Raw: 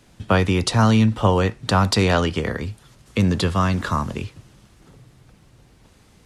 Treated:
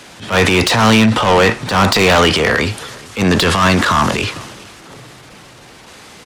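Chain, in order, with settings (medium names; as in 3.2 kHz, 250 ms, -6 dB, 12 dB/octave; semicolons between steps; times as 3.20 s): overdrive pedal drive 26 dB, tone 6 kHz, clips at -3.5 dBFS; transient shaper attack -12 dB, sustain +5 dB; echo from a far wall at 71 m, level -23 dB; trim +1.5 dB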